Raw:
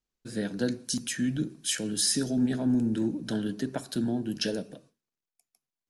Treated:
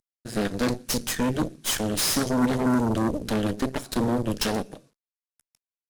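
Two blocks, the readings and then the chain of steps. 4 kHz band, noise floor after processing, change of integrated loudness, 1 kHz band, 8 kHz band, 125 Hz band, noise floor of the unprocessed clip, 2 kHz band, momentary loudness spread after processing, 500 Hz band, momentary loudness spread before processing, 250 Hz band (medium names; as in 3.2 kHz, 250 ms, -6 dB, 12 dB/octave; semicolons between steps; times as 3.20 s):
+3.0 dB, under -85 dBFS, +3.5 dB, +15.5 dB, +2.0 dB, +5.0 dB, under -85 dBFS, +6.5 dB, 6 LU, +7.0 dB, 9 LU, +3.0 dB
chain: CVSD coder 64 kbps; Chebyshev shaper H 8 -12 dB, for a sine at -16 dBFS; trim +2.5 dB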